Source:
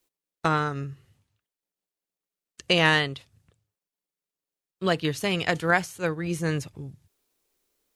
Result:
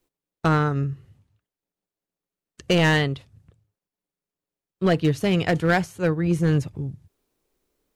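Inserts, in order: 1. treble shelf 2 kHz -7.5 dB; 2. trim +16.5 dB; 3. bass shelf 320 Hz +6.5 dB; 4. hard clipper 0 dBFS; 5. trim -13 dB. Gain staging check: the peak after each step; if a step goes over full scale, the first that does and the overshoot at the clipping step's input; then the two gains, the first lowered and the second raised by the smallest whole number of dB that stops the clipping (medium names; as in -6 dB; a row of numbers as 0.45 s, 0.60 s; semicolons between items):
-9.0 dBFS, +7.5 dBFS, +7.5 dBFS, 0.0 dBFS, -13.0 dBFS; step 2, 7.5 dB; step 2 +8.5 dB, step 5 -5 dB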